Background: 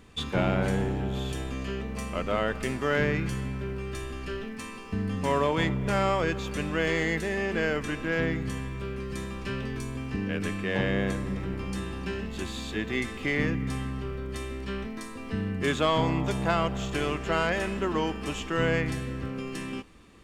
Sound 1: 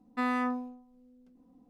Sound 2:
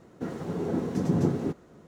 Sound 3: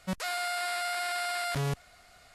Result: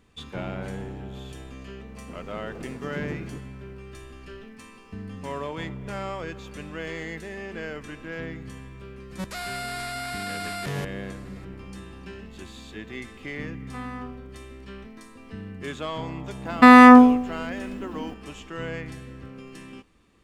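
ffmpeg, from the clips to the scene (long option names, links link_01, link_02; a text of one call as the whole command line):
ffmpeg -i bed.wav -i cue0.wav -i cue1.wav -i cue2.wav -filter_complex "[1:a]asplit=2[link_01][link_02];[0:a]volume=-7.5dB[link_03];[link_02]alimiter=level_in=25dB:limit=-1dB:release=50:level=0:latency=1[link_04];[2:a]atrim=end=1.87,asetpts=PTS-STARTPTS,volume=-10.5dB,afade=type=in:duration=0.004:curve=hsin,afade=type=out:start_time=1.866:duration=0.004:curve=hsin,adelay=1870[link_05];[3:a]atrim=end=2.34,asetpts=PTS-STARTPTS,volume=-1dB,afade=type=in:duration=0.004:curve=hsin,afade=type=out:start_time=2.336:duration=0.004:curve=hsin,adelay=9110[link_06];[link_01]atrim=end=1.69,asetpts=PTS-STARTPTS,volume=-7dB,afade=type=in:duration=0.004:curve=hsin,afade=type=out:start_time=1.686:duration=0.004:curve=hsin,adelay=13560[link_07];[link_04]atrim=end=1.69,asetpts=PTS-STARTPTS,volume=-1dB,afade=type=in:duration=0.004:curve=hsin,afade=type=out:start_time=1.686:duration=0.004:curve=hsin,adelay=16450[link_08];[link_03][link_05][link_06][link_07][link_08]amix=inputs=5:normalize=0" out.wav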